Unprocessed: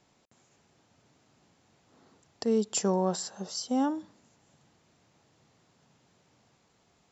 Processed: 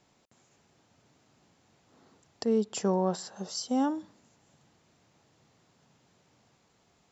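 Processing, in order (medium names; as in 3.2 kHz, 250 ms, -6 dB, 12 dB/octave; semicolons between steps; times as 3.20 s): 2.44–3.35 s: treble shelf 4.8 kHz -> 6.8 kHz -11.5 dB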